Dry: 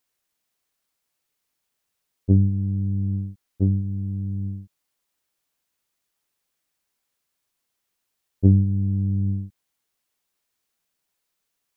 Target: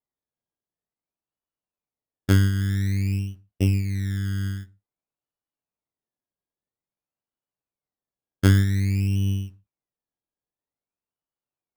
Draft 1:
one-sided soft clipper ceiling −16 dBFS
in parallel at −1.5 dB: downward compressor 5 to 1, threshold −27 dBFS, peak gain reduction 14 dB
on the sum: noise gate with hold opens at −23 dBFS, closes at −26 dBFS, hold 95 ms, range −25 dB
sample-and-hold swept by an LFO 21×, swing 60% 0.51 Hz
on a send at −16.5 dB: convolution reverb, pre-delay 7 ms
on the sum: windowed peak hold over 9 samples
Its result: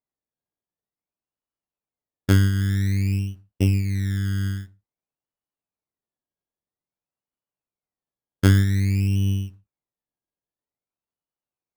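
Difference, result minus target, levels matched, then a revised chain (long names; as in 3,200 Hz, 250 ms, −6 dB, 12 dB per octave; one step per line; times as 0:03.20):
downward compressor: peak gain reduction −8 dB
one-sided soft clipper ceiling −16 dBFS
in parallel at −1.5 dB: downward compressor 5 to 1, threshold −37 dBFS, peak gain reduction 22 dB
on the sum: noise gate with hold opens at −23 dBFS, closes at −26 dBFS, hold 95 ms, range −25 dB
sample-and-hold swept by an LFO 21×, swing 60% 0.51 Hz
on a send at −16.5 dB: convolution reverb, pre-delay 7 ms
on the sum: windowed peak hold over 9 samples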